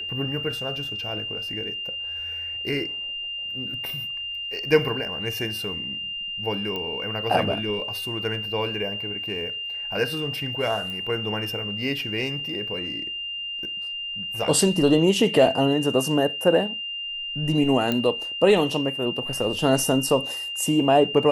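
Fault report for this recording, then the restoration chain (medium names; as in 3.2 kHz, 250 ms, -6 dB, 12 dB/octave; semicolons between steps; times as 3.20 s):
whine 2.8 kHz -29 dBFS
6.76 s: pop -18 dBFS
10.90 s: pop -22 dBFS
17.92 s: pop -11 dBFS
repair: de-click; band-stop 2.8 kHz, Q 30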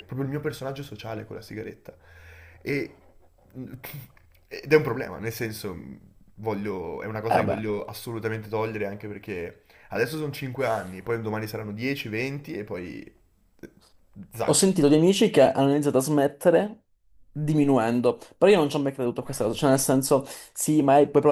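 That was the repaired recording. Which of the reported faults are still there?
17.92 s: pop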